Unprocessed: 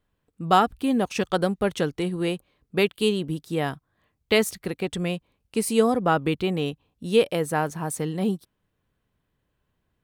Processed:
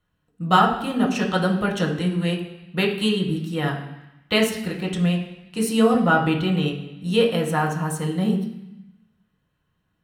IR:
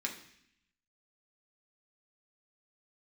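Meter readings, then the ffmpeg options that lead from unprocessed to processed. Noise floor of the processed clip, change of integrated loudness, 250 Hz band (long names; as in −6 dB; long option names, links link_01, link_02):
−72 dBFS, +2.5 dB, +4.5 dB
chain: -filter_complex "[1:a]atrim=start_sample=2205,asetrate=33516,aresample=44100[link_01];[0:a][link_01]afir=irnorm=-1:irlink=0,volume=-1dB"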